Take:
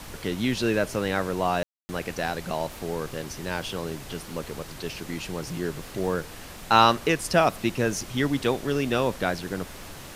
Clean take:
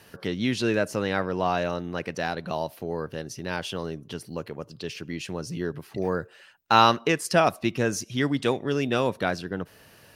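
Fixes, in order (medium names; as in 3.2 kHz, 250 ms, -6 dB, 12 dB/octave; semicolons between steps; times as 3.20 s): room tone fill 1.63–1.89 s; noise print and reduce 11 dB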